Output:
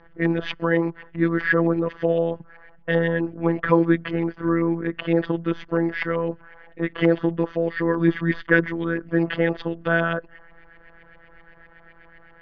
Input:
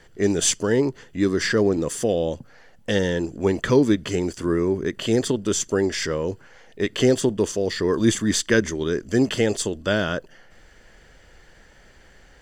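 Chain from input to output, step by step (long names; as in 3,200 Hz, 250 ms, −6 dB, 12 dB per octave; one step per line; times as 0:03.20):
auto-filter low-pass saw up 7.8 Hz 950–2,400 Hz
phases set to zero 167 Hz
inverse Chebyshev low-pass filter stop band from 8,100 Hz, stop band 40 dB
level +1.5 dB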